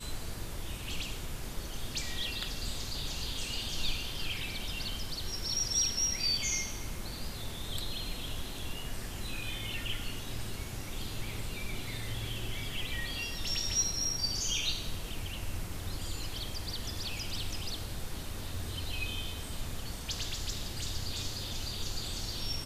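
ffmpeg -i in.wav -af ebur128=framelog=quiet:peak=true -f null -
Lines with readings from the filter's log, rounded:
Integrated loudness:
  I:         -35.5 LUFS
  Threshold: -45.5 LUFS
Loudness range:
  LRA:         6.7 LU
  Threshold: -55.3 LUFS
  LRA low:   -38.7 LUFS
  LRA high:  -32.0 LUFS
True peak:
  Peak:      -17.5 dBFS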